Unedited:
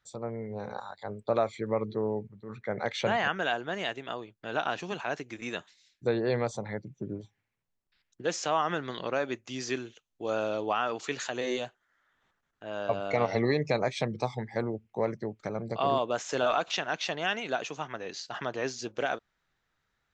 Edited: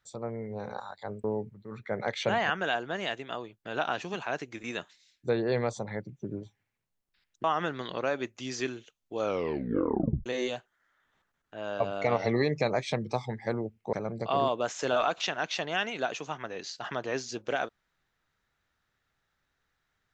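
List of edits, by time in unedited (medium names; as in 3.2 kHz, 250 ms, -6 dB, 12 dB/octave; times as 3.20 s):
1.24–2.02 s: delete
8.22–8.53 s: delete
10.30 s: tape stop 1.05 s
15.02–15.43 s: delete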